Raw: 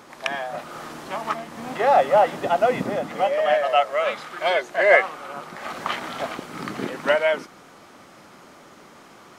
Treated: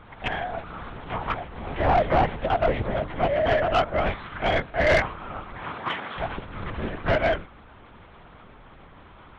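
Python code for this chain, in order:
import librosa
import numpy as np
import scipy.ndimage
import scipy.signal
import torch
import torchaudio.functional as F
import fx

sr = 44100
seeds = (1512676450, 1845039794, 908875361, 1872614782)

y = fx.air_absorb(x, sr, metres=63.0)
y = fx.lpc_vocoder(y, sr, seeds[0], excitation='whisper', order=8)
y = fx.highpass(y, sr, hz=fx.line((5.63, 100.0), (6.16, 300.0)), slope=12, at=(5.63, 6.16), fade=0.02)
y = 10.0 ** (-14.0 / 20.0) * np.tanh(y / 10.0 ** (-14.0 / 20.0))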